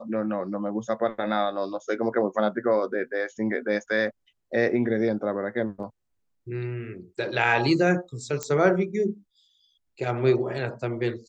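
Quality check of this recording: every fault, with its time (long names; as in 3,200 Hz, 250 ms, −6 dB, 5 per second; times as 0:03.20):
0:08.43: click −14 dBFS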